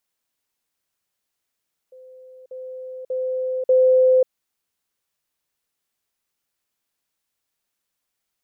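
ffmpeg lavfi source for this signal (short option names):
-f lavfi -i "aevalsrc='pow(10,(-41.5+10*floor(t/0.59))/20)*sin(2*PI*514*t)*clip(min(mod(t,0.59),0.54-mod(t,0.59))/0.005,0,1)':d=2.36:s=44100"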